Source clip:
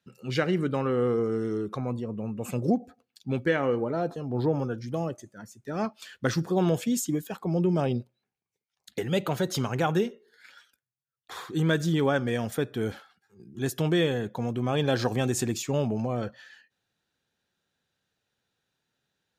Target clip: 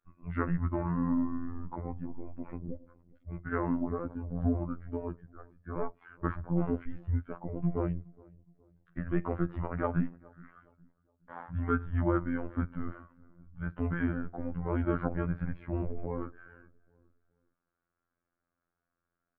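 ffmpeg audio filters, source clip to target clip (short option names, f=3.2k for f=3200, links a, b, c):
-filter_complex "[0:a]asettb=1/sr,asplit=3[a][b][c];[a]atrim=end=2.044[d];[b]atrim=start=2.04:end=3.53,asetpts=PTS-STARTPTS,afade=t=in:d=0.004:c=qsin,afade=t=out:st=1.486:d=0.004:c=qsin,acompressor=threshold=-29dB:ratio=10[e];[c]atrim=start=3.526[f];[d][e]acrossfade=d=0.004:c1=hsin:c2=qsin[g];[g][f]acrossfade=d=0.004:c1=qsin:c2=hsin,asplit=2[h][i];[i]adelay=416,lowpass=f=1.3k:p=1,volume=-23.5dB,asplit=2[j][k];[k]adelay=416,lowpass=f=1.3k:p=1,volume=0.4,asplit=2[l][m];[m]adelay=416,lowpass=f=1.3k:p=1,volume=0.4[n];[h][j][l][n]amix=inputs=4:normalize=0,highpass=f=150:t=q:w=0.5412,highpass=f=150:t=q:w=1.307,lowpass=f=2k:t=q:w=0.5176,lowpass=f=2k:t=q:w=0.7071,lowpass=f=2k:t=q:w=1.932,afreqshift=-210,afftfilt=real='hypot(re,im)*cos(PI*b)':imag='0':win_size=2048:overlap=0.75"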